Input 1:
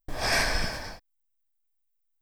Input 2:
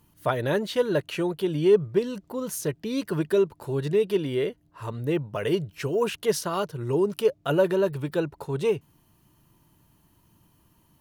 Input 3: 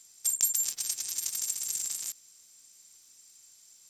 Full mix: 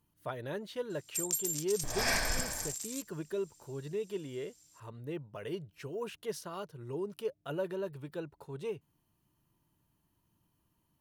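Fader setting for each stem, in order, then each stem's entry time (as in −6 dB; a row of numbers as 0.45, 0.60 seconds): −6.0, −14.0, −7.0 decibels; 1.75, 0.00, 0.90 seconds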